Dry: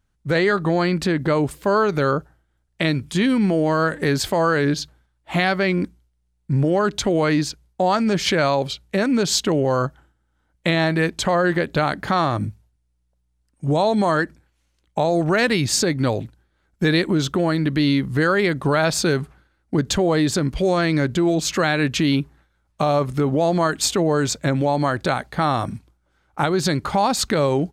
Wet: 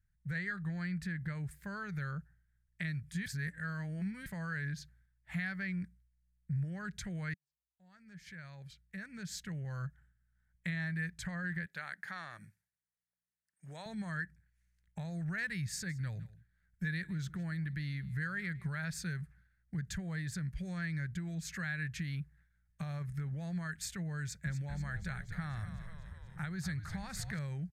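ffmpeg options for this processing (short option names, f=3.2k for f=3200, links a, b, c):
-filter_complex "[0:a]asettb=1/sr,asplit=3[a][b][c];[a]atrim=end=11.664[d];[b]atrim=start=11.66:end=13.86,asetpts=PTS-STARTPTS,afade=t=in:d=0.004:c=qsin,afade=t=out:st=2.196:d=0.004:c=qsin,highpass=430[e];[c]atrim=start=13.856[f];[d][e]acrossfade=d=0.004:c1=hsin:c2=qsin[g];[g][f]acrossfade=d=0.004:c1=qsin:c2=hsin,asplit=3[h][i][j];[h]afade=t=out:st=15.88:d=0.02[k];[i]aecho=1:1:161:0.0891,afade=t=in:st=15.88:d=0.02,afade=t=out:st=18.79:d=0.02[l];[j]afade=t=in:st=18.79:d=0.02[m];[k][l][m]amix=inputs=3:normalize=0,asettb=1/sr,asplit=3[n][o][p];[n]atrim=end=24.214[q];[o]atrim=start=24.21:end=27.39,asetpts=PTS-STARTPTS,afade=t=in:d=0.004:c=qsin,afade=t=out:st=3.176:d=0.004:c=qsin,asplit=9[r][s][t][u][v][w][x][y][z];[s]adelay=243,afreqshift=-81,volume=-10dB[aa];[t]adelay=486,afreqshift=-162,volume=-14.2dB[ab];[u]adelay=729,afreqshift=-243,volume=-18.3dB[ac];[v]adelay=972,afreqshift=-324,volume=-22.5dB[ad];[w]adelay=1215,afreqshift=-405,volume=-26.6dB[ae];[x]adelay=1458,afreqshift=-486,volume=-30.8dB[af];[y]adelay=1701,afreqshift=-567,volume=-34.9dB[ag];[z]adelay=1944,afreqshift=-648,volume=-39.1dB[ah];[r][aa][ab][ac][ad][ae][af][ag][ah]amix=inputs=9:normalize=0,atrim=end_sample=140238[ai];[p]atrim=start=27.386[aj];[q][ai]acrossfade=d=0.004:c1=hsin:c2=qsin[ak];[ak][aj]acrossfade=d=0.004:c1=qsin:c2=hsin,asplit=4[al][am][an][ao];[al]atrim=end=3.262[ap];[am]atrim=start=3.258:end=4.262,asetpts=PTS-STARTPTS,areverse[aq];[an]atrim=start=4.258:end=7.34,asetpts=PTS-STARTPTS,afade=t=out:st=3.078:d=0.004:c=hsin[ar];[ao]atrim=start=7.34,asetpts=PTS-STARTPTS,afade=t=in:d=2.5:c=qua[as];[ap][aq]acrossfade=d=0.004:c1=hsin:c2=hsin[at];[ar][as]concat=n=2:v=0:a=1[au];[at][au]acrossfade=d=0.004:c1=hsin:c2=hsin,firequalizer=gain_entry='entry(180,0);entry(260,-23);entry(1100,-18);entry(1700,2);entry(2900,-14);entry(4900,-10);entry(9800,-5)':delay=0.05:min_phase=1,acompressor=threshold=-41dB:ratio=1.5,volume=-6.5dB"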